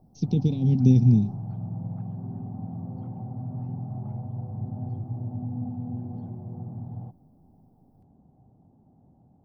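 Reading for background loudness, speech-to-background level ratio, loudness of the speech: -35.0 LUFS, 13.5 dB, -21.5 LUFS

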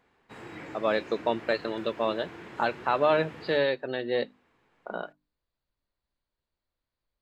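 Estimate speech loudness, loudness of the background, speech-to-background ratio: -29.0 LUFS, -44.5 LUFS, 15.5 dB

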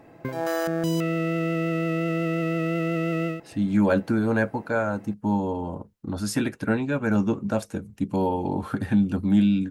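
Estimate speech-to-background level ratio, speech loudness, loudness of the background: 1.5 dB, -25.0 LUFS, -26.5 LUFS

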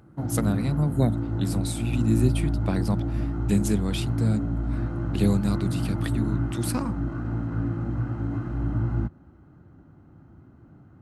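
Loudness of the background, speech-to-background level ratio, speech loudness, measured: -28.5 LUFS, 0.5 dB, -28.0 LUFS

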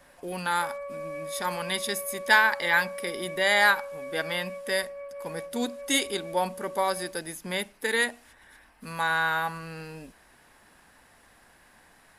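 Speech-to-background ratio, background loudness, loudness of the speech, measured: 12.0 dB, -39.0 LUFS, -27.0 LUFS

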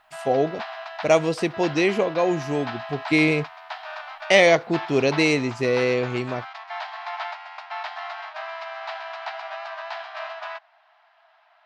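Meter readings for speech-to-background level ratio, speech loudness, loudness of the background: 13.0 dB, -21.5 LUFS, -34.5 LUFS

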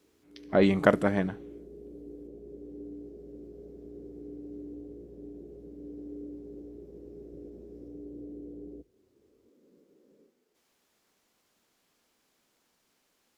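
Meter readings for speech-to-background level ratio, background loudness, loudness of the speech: 19.5 dB, -45.0 LUFS, -25.5 LUFS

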